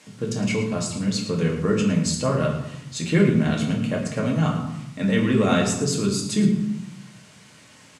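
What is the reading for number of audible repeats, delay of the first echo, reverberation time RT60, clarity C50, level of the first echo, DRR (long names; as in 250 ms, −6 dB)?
1, 110 ms, 0.85 s, 5.0 dB, −11.5 dB, −2.0 dB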